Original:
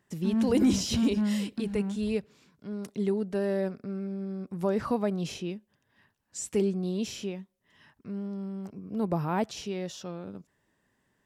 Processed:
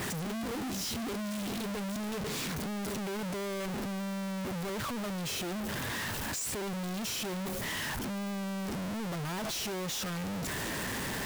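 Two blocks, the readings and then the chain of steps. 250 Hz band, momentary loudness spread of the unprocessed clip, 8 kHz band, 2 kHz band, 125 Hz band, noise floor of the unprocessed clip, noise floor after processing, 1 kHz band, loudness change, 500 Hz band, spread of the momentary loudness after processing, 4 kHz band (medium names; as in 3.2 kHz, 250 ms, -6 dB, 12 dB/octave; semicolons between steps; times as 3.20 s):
-6.5 dB, 14 LU, +3.5 dB, +7.5 dB, -2.5 dB, -75 dBFS, -36 dBFS, +0.5 dB, -4.5 dB, -7.0 dB, 2 LU, +3.5 dB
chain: one-bit comparator; trim -4.5 dB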